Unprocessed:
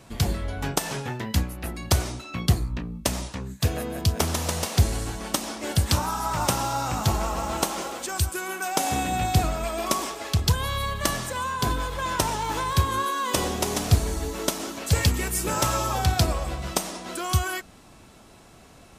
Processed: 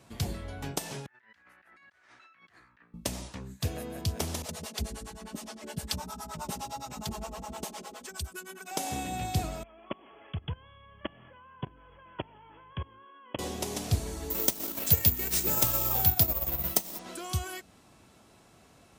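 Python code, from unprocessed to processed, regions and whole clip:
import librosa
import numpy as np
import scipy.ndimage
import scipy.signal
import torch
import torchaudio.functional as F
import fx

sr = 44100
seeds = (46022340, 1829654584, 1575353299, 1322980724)

y = fx.chain(x, sr, fx.bandpass_q(hz=1700.0, q=4.1),
    fx.over_compress(threshold_db=-54.0, ratio=-1.0), at=(1.06, 2.94))
y = fx.chain(y, sr, fx.comb(ms=4.7, depth=0.65),
    fx.harmonic_tremolo(hz=9.7, depth_pct=100, crossover_hz=410.0), at=(4.42, 8.71))
y = fx.chain(y, sr, fx.brickwall_lowpass(high_hz=3400.0),
    fx.level_steps(step_db=23), at=(9.63, 13.39))
y = fx.chain(y, sr, fx.transient(attack_db=2, sustain_db=-8),
    fx.resample_bad(factor=3, down='none', up='zero_stuff'),
    fx.band_squash(depth_pct=40), at=(14.3, 16.99))
y = fx.dynamic_eq(y, sr, hz=1300.0, q=1.3, threshold_db=-40.0, ratio=4.0, max_db=-6)
y = scipy.signal.sosfilt(scipy.signal.butter(2, 60.0, 'highpass', fs=sr, output='sos'), y)
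y = F.gain(torch.from_numpy(y), -7.5).numpy()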